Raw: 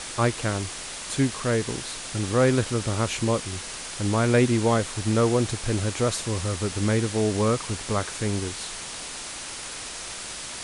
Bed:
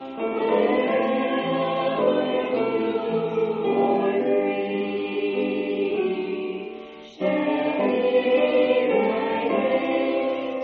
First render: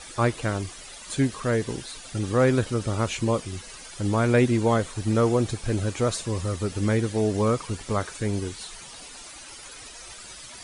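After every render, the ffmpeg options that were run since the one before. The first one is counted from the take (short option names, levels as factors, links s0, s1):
-af "afftdn=nr=12:nf=-36"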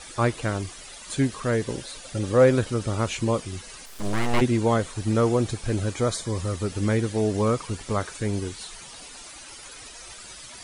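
-filter_complex "[0:a]asettb=1/sr,asplit=3[s0][s1][s2];[s0]atrim=end=1.684[s3];[s1]atrim=start=1.68:end=2.57,asetpts=PTS-STARTPTS,afade=t=in:d=0.004:c=qsin,afade=t=out:st=0.886:d=0.004:c=qsin,equalizer=f=550:t=o:w=0.25:g=10[s4];[s2]atrim=start=2.566[s5];[s3][s4]acrossfade=d=0.004:c1=hsin:c2=qsin[s6];[s6][s5]acrossfade=d=0.004:c1=qsin:c2=hsin,asplit=3[s7][s8][s9];[s7]afade=t=out:st=3.85:d=0.02[s10];[s8]aeval=exprs='abs(val(0))':c=same,afade=t=in:st=3.85:d=0.02,afade=t=out:st=4.4:d=0.02[s11];[s9]afade=t=in:st=4.4:d=0.02[s12];[s10][s11][s12]amix=inputs=3:normalize=0,asettb=1/sr,asplit=3[s13][s14][s15];[s13]atrim=end=5.944[s16];[s14]atrim=start=5.94:end=6.38,asetpts=PTS-STARTPTS,afade=t=in:d=0.004:c=qsin,afade=t=out:st=0.436:d=0.004:c=qsin,asuperstop=centerf=2700:order=20:qfactor=7.2[s17];[s15]atrim=start=6.376[s18];[s16][s17]acrossfade=d=0.004:c1=hsin:c2=qsin[s19];[s19][s18]acrossfade=d=0.004:c1=qsin:c2=hsin"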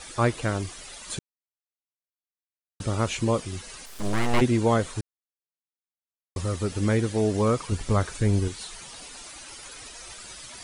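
-filter_complex "[0:a]asettb=1/sr,asplit=3[s0][s1][s2];[s0]atrim=end=7.724[s3];[s1]atrim=start=7.72:end=8.48,asetpts=PTS-STARTPTS,afade=t=in:d=0.004:c=qsin,afade=t=out:st=0.756:d=0.004:c=qsin,lowshelf=f=130:g=11[s4];[s2]atrim=start=8.476[s5];[s3][s4]acrossfade=d=0.004:c1=hsin:c2=qsin[s6];[s6][s5]acrossfade=d=0.004:c1=qsin:c2=hsin,asplit=5[s7][s8][s9][s10][s11];[s7]atrim=end=1.19,asetpts=PTS-STARTPTS,afade=t=out:st=1.186:d=0.004:c=hsin[s12];[s8]atrim=start=1.19:end=2.8,asetpts=PTS-STARTPTS,volume=0[s13];[s9]atrim=start=2.8:end=5.01,asetpts=PTS-STARTPTS,afade=t=in:d=0.004:c=hsin,afade=t=out:st=2.206:d=0.004:c=hsin[s14];[s10]atrim=start=5.01:end=6.36,asetpts=PTS-STARTPTS,volume=0[s15];[s11]atrim=start=6.36,asetpts=PTS-STARTPTS,afade=t=in:d=0.004:c=hsin[s16];[s12][s13][s14][s15][s16]concat=n=5:v=0:a=1"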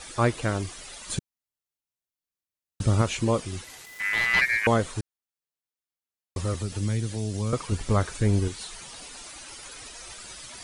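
-filter_complex "[0:a]asettb=1/sr,asplit=3[s0][s1][s2];[s0]atrim=end=1.094[s3];[s1]atrim=start=1.09:end=3.02,asetpts=PTS-STARTPTS,afade=t=in:d=0.004:c=qsin,afade=t=out:st=1.926:d=0.004:c=qsin,bass=f=250:g=7,treble=f=4000:g=2[s4];[s2]atrim=start=3.016[s5];[s3][s4]acrossfade=d=0.004:c1=hsin:c2=qsin[s6];[s6][s5]acrossfade=d=0.004:c1=qsin:c2=hsin,asettb=1/sr,asplit=3[s7][s8][s9];[s7]atrim=end=3.644[s10];[s8]atrim=start=3.64:end=4.67,asetpts=PTS-STARTPTS,afade=t=in:d=0.004:c=qsin,afade=t=out:st=1.026:d=0.004:c=qsin,aeval=exprs='val(0)*sin(2*PI*2000*n/s)':c=same[s11];[s9]atrim=start=4.666[s12];[s10][s11]acrossfade=d=0.004:c1=hsin:c2=qsin[s13];[s13][s12]acrossfade=d=0.004:c1=qsin:c2=hsin,asettb=1/sr,asplit=3[s14][s15][s16];[s14]atrim=end=6.544[s17];[s15]atrim=start=6.54:end=7.53,asetpts=PTS-STARTPTS,afade=t=in:d=0.004:c=qsin,afade=t=out:st=0.986:d=0.004:c=qsin,acrossover=split=180|3000[s18][s19][s20];[s19]acompressor=threshold=0.0178:ratio=6:attack=3.2:release=140:knee=2.83:detection=peak[s21];[s18][s21][s20]amix=inputs=3:normalize=0[s22];[s16]atrim=start=7.526[s23];[s17][s22]acrossfade=d=0.004:c1=hsin:c2=qsin[s24];[s24][s23]acrossfade=d=0.004:c1=qsin:c2=hsin"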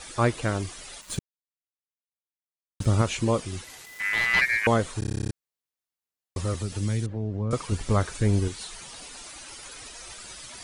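-filter_complex "[0:a]asettb=1/sr,asplit=3[s0][s1][s2];[s0]atrim=end=1.014[s3];[s1]atrim=start=1.01:end=2.86,asetpts=PTS-STARTPTS,afade=t=in:d=0.004:c=qsin,afade=t=out:st=1.846:d=0.004:c=qsin,aeval=exprs='sgn(val(0))*max(abs(val(0))-0.00708,0)':c=same[s4];[s2]atrim=start=2.856[s5];[s3][s4]acrossfade=d=0.004:c1=hsin:c2=qsin[s6];[s6][s5]acrossfade=d=0.004:c1=qsin:c2=hsin,asettb=1/sr,asplit=3[s7][s8][s9];[s7]atrim=end=7.064[s10];[s8]atrim=start=7.06:end=7.51,asetpts=PTS-STARTPTS,afade=t=in:d=0.004:c=qsin,afade=t=out:st=0.446:d=0.004:c=qsin,lowpass=1100[s11];[s9]atrim=start=7.506[s12];[s10][s11]acrossfade=d=0.004:c1=hsin:c2=qsin[s13];[s13][s12]acrossfade=d=0.004:c1=qsin:c2=hsin,asplit=12[s14][s15][s16][s17][s18][s19][s20][s21][s22][s23][s24][s25];[s14]atrim=end=5.022[s26];[s15]atrim=start=4.988:end=5.022[s27];[s16]atrim=start=4.988:end=5.022[s28];[s17]atrim=start=4.988:end=5.022[s29];[s18]atrim=start=4.988:end=5.022[s30];[s19]atrim=start=4.988:end=5.022[s31];[s20]atrim=start=4.988:end=5.022[s32];[s21]atrim=start=4.988:end=5.022[s33];[s22]atrim=start=4.988:end=5.022[s34];[s23]atrim=start=4.988:end=5.022[s35];[s24]atrim=start=4.988:end=5.022[s36];[s25]atrim=start=5.318[s37];[s26][s27]acrossfade=d=0.004:c1=hsin:c2=hsin[s38];[s38][s28]acrossfade=d=0.004:c1=hsin:c2=hsin[s39];[s39][s29]acrossfade=d=0.004:c1=hsin:c2=hsin[s40];[s40][s30]acrossfade=d=0.004:c1=hsin:c2=hsin[s41];[s41][s31]acrossfade=d=0.004:c1=hsin:c2=hsin[s42];[s42][s32]acrossfade=d=0.004:c1=hsin:c2=hsin[s43];[s43][s33]acrossfade=d=0.004:c1=hsin:c2=hsin[s44];[s44][s34]acrossfade=d=0.004:c1=hsin:c2=hsin[s45];[s45][s35]acrossfade=d=0.004:c1=hsin:c2=hsin[s46];[s46][s36]acrossfade=d=0.004:c1=hsin:c2=hsin[s47];[s47][s37]acrossfade=d=0.004:c1=hsin:c2=hsin"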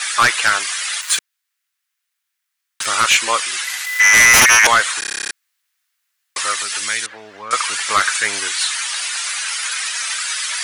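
-af "highpass=f=1600:t=q:w=1.7,aeval=exprs='0.501*sin(PI/2*5.62*val(0)/0.501)':c=same"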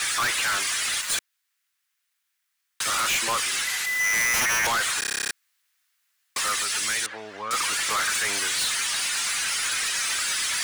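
-af "asoftclip=type=tanh:threshold=0.0794"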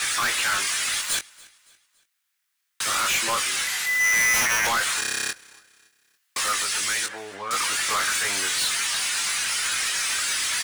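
-filter_complex "[0:a]asplit=2[s0][s1];[s1]adelay=21,volume=0.473[s2];[s0][s2]amix=inputs=2:normalize=0,aecho=1:1:282|564|846:0.0668|0.0274|0.0112"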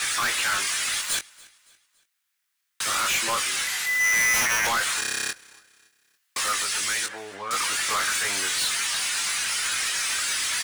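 -af "volume=0.891"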